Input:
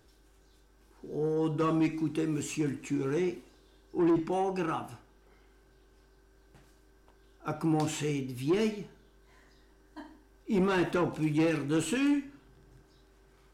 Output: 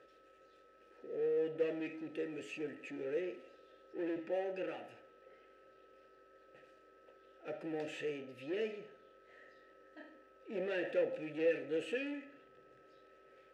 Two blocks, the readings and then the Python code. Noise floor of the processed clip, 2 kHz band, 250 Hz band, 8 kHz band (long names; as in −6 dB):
−65 dBFS, −6.0 dB, −14.5 dB, below −20 dB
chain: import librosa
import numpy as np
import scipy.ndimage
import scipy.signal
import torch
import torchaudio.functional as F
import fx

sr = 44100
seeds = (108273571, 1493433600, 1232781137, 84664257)

y = fx.power_curve(x, sr, exponent=0.7)
y = fx.vowel_filter(y, sr, vowel='e')
y = y + 10.0 ** (-67.0 / 20.0) * np.sin(2.0 * np.pi * 1300.0 * np.arange(len(y)) / sr)
y = y * 10.0 ** (1.5 / 20.0)